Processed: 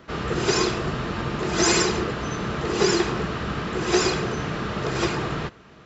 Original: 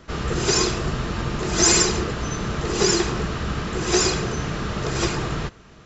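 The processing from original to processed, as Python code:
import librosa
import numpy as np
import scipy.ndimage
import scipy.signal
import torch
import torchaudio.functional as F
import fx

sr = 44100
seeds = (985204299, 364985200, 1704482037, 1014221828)

y = fx.highpass(x, sr, hz=140.0, slope=6)
y = fx.peak_eq(y, sr, hz=7100.0, db=-8.5, octaves=1.2)
y = y * librosa.db_to_amplitude(1.0)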